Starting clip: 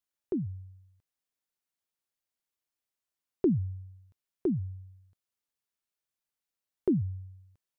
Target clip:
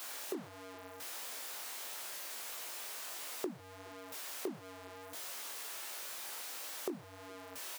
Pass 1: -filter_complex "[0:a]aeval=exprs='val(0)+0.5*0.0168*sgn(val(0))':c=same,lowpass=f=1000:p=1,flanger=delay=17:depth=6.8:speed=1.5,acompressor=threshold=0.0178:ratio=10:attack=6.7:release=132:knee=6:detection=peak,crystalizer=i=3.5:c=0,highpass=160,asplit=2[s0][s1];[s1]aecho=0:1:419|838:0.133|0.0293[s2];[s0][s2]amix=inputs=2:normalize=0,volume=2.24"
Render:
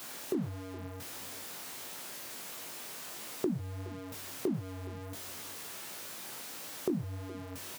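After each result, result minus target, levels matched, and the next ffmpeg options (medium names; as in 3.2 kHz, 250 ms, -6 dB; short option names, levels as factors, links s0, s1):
125 Hz band +15.5 dB; echo-to-direct +9 dB
-filter_complex "[0:a]aeval=exprs='val(0)+0.5*0.0168*sgn(val(0))':c=same,lowpass=f=1000:p=1,flanger=delay=17:depth=6.8:speed=1.5,acompressor=threshold=0.0178:ratio=10:attack=6.7:release=132:knee=6:detection=peak,crystalizer=i=3.5:c=0,highpass=520,asplit=2[s0][s1];[s1]aecho=0:1:419|838:0.133|0.0293[s2];[s0][s2]amix=inputs=2:normalize=0,volume=2.24"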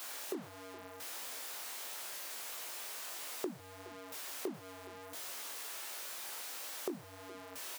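echo-to-direct +9 dB
-filter_complex "[0:a]aeval=exprs='val(0)+0.5*0.0168*sgn(val(0))':c=same,lowpass=f=1000:p=1,flanger=delay=17:depth=6.8:speed=1.5,acompressor=threshold=0.0178:ratio=10:attack=6.7:release=132:knee=6:detection=peak,crystalizer=i=3.5:c=0,highpass=520,asplit=2[s0][s1];[s1]aecho=0:1:419|838:0.0473|0.0104[s2];[s0][s2]amix=inputs=2:normalize=0,volume=2.24"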